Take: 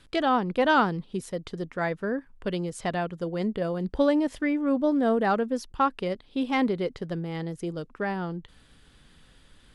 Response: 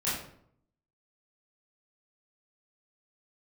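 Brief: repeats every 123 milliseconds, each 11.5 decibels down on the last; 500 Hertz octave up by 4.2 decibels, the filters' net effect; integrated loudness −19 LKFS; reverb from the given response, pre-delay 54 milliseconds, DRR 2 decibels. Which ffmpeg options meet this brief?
-filter_complex "[0:a]equalizer=frequency=500:width_type=o:gain=5,aecho=1:1:123|246|369:0.266|0.0718|0.0194,asplit=2[link_01][link_02];[1:a]atrim=start_sample=2205,adelay=54[link_03];[link_02][link_03]afir=irnorm=-1:irlink=0,volume=-10dB[link_04];[link_01][link_04]amix=inputs=2:normalize=0,volume=3.5dB"

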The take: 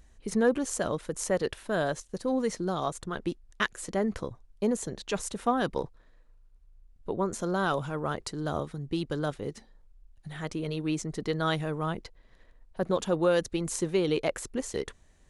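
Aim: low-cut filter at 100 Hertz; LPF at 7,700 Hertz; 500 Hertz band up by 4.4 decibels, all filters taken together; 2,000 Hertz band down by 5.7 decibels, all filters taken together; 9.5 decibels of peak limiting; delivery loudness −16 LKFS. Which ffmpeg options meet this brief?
ffmpeg -i in.wav -af "highpass=100,lowpass=7700,equalizer=frequency=500:width_type=o:gain=5.5,equalizer=frequency=2000:width_type=o:gain=-8.5,volume=15dB,alimiter=limit=-4dB:level=0:latency=1" out.wav

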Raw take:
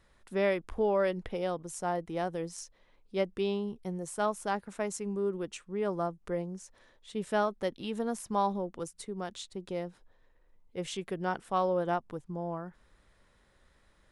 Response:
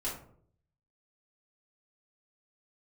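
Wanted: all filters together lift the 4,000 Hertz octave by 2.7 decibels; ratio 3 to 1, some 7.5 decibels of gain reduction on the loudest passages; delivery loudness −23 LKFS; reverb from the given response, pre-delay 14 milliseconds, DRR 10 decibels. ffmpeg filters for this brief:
-filter_complex "[0:a]equalizer=frequency=4000:width_type=o:gain=3.5,acompressor=threshold=-34dB:ratio=3,asplit=2[link_01][link_02];[1:a]atrim=start_sample=2205,adelay=14[link_03];[link_02][link_03]afir=irnorm=-1:irlink=0,volume=-13dB[link_04];[link_01][link_04]amix=inputs=2:normalize=0,volume=15.5dB"

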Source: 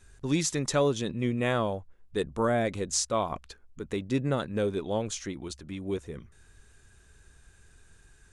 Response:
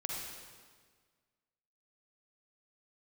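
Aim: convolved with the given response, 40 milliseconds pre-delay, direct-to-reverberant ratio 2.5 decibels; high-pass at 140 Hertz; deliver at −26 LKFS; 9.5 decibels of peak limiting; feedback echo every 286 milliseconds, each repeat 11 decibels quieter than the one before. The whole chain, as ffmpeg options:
-filter_complex "[0:a]highpass=140,alimiter=limit=-22dB:level=0:latency=1,aecho=1:1:286|572|858:0.282|0.0789|0.0221,asplit=2[link_01][link_02];[1:a]atrim=start_sample=2205,adelay=40[link_03];[link_02][link_03]afir=irnorm=-1:irlink=0,volume=-4.5dB[link_04];[link_01][link_04]amix=inputs=2:normalize=0,volume=6.5dB"

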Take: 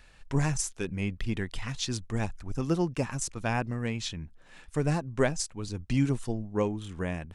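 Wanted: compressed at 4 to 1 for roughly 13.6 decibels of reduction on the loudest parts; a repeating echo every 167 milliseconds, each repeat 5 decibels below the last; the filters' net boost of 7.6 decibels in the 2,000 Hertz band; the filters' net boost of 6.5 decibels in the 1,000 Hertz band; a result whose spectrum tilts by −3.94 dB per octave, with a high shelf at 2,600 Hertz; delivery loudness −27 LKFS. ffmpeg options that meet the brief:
ffmpeg -i in.wav -af "equalizer=frequency=1000:width_type=o:gain=6.5,equalizer=frequency=2000:width_type=o:gain=5,highshelf=frequency=2600:gain=6,acompressor=threshold=-35dB:ratio=4,aecho=1:1:167|334|501|668|835|1002|1169:0.562|0.315|0.176|0.0988|0.0553|0.031|0.0173,volume=10dB" out.wav

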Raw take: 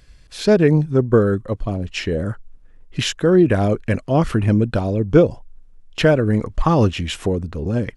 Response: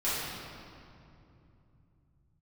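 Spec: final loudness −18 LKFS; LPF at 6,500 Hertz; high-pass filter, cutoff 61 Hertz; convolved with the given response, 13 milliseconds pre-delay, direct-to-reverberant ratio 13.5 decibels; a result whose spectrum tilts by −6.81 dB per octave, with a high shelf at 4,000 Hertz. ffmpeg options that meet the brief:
-filter_complex "[0:a]highpass=61,lowpass=6500,highshelf=frequency=4000:gain=-8,asplit=2[link_01][link_02];[1:a]atrim=start_sample=2205,adelay=13[link_03];[link_02][link_03]afir=irnorm=-1:irlink=0,volume=-23.5dB[link_04];[link_01][link_04]amix=inputs=2:normalize=0,volume=0.5dB"

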